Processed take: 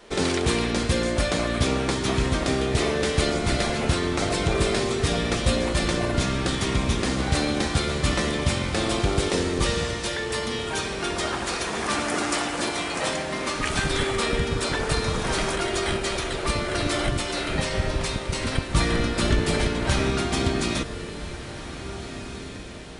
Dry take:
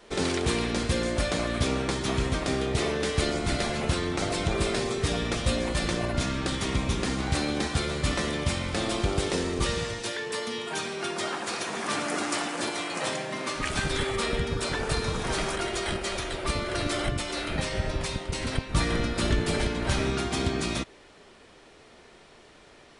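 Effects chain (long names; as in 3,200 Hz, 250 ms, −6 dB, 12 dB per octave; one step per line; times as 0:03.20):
feedback delay with all-pass diffusion 1,720 ms, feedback 47%, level −12 dB
level +3.5 dB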